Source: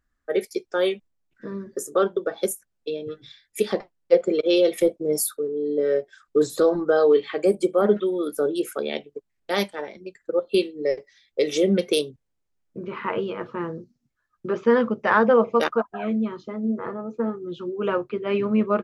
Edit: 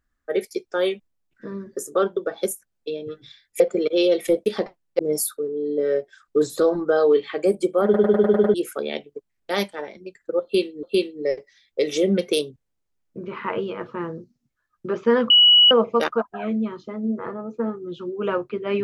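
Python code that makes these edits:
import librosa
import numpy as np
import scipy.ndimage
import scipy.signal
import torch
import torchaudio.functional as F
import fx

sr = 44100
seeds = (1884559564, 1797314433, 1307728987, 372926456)

y = fx.edit(x, sr, fx.move(start_s=3.6, length_s=0.53, to_s=4.99),
    fx.stutter_over(start_s=7.84, slice_s=0.1, count=7),
    fx.repeat(start_s=10.43, length_s=0.4, count=2),
    fx.bleep(start_s=14.9, length_s=0.41, hz=2930.0, db=-9.5), tone=tone)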